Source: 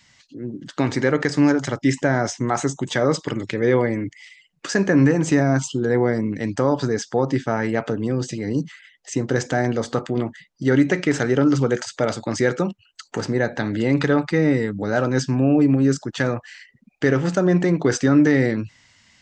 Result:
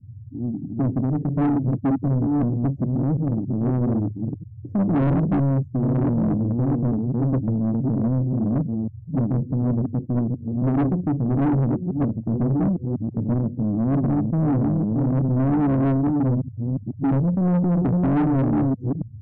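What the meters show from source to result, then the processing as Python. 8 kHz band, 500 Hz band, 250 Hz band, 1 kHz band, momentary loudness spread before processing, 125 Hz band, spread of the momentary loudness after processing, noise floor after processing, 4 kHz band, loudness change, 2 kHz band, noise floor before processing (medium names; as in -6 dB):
under -40 dB, -9.0 dB, -0.5 dB, -4.5 dB, 10 LU, +3.5 dB, 6 LU, -39 dBFS, under -25 dB, -1.5 dB, under -15 dB, -59 dBFS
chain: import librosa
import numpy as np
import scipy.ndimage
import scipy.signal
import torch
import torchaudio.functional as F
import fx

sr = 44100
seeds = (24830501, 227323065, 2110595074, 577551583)

y = fx.reverse_delay(x, sr, ms=634, wet_db=-4.5)
y = scipy.signal.sosfilt(scipy.signal.cheby2(4, 70, 1200.0, 'lowpass', fs=sr, output='sos'), y)
y = fx.hum_notches(y, sr, base_hz=50, count=2)
y = fx.dmg_noise_band(y, sr, seeds[0], low_hz=83.0, high_hz=130.0, level_db=-48.0)
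y = 10.0 ** (-25.0 / 20.0) * np.tanh(y / 10.0 ** (-25.0 / 20.0))
y = F.gain(torch.from_numpy(y), 8.0).numpy()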